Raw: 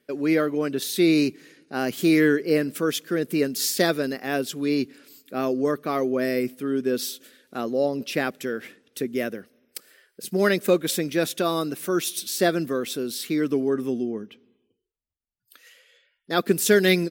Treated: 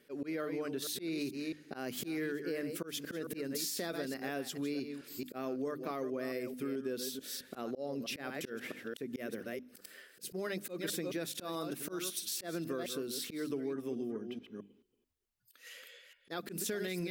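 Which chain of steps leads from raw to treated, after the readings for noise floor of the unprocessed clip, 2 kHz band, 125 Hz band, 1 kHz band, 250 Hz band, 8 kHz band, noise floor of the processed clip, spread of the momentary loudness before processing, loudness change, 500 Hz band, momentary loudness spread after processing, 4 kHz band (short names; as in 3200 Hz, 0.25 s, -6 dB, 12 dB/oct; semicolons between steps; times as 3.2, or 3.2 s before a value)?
-76 dBFS, -15.5 dB, -15.0 dB, -15.0 dB, -15.0 dB, -10.5 dB, -68 dBFS, 13 LU, -14.5 dB, -15.5 dB, 7 LU, -12.0 dB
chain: reverse delay 0.218 s, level -10.5 dB; notches 50/100/150/200/250/300 Hz; limiter -14.5 dBFS, peak gain reduction 9 dB; auto swell 0.233 s; compressor 4:1, threshold -41 dBFS, peak gain reduction 17.5 dB; gain +3 dB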